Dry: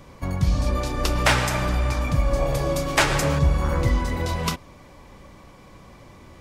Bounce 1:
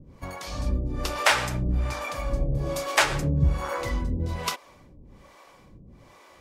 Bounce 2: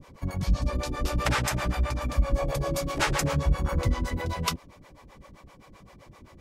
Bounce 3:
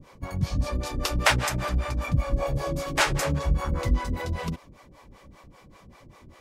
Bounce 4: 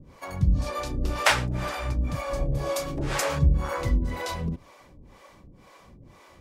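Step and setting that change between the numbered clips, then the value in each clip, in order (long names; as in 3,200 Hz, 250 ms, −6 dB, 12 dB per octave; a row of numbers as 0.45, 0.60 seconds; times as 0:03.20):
two-band tremolo in antiphase, speed: 1.2, 7.7, 5.1, 2 Hertz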